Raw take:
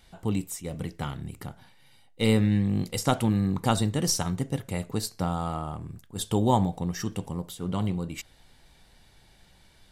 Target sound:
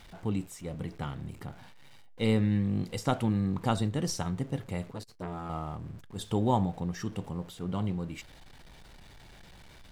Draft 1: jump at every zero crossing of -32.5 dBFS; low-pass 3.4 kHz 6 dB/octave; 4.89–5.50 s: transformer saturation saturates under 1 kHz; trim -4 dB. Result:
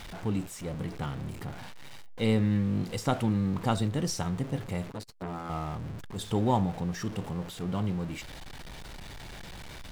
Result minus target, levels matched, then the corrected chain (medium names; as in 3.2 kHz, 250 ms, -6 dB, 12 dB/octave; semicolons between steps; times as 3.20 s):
jump at every zero crossing: distortion +10 dB
jump at every zero crossing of -43.5 dBFS; low-pass 3.4 kHz 6 dB/octave; 4.89–5.50 s: transformer saturation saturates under 1 kHz; trim -4 dB